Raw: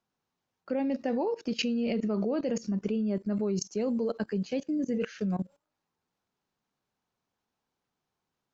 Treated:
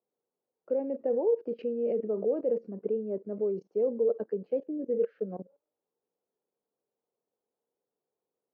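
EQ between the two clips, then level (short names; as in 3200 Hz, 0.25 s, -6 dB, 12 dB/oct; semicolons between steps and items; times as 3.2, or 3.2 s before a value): band-pass 470 Hz, Q 3.9; air absorption 260 m; +7.0 dB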